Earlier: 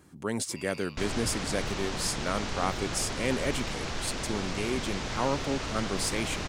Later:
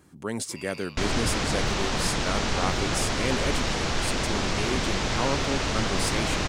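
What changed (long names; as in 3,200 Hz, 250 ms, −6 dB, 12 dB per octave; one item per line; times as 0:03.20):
second sound +6.5 dB
reverb: on, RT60 2.0 s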